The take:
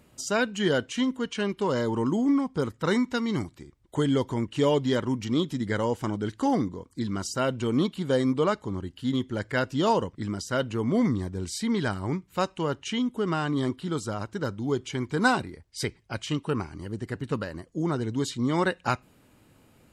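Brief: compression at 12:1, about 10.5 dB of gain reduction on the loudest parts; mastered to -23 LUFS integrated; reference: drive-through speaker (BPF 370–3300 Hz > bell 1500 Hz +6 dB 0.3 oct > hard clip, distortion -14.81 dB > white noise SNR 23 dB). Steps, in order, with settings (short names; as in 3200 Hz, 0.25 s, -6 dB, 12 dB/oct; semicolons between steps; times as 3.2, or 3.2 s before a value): compressor 12:1, threshold -28 dBFS; BPF 370–3300 Hz; bell 1500 Hz +6 dB 0.3 oct; hard clip -27.5 dBFS; white noise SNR 23 dB; gain +15 dB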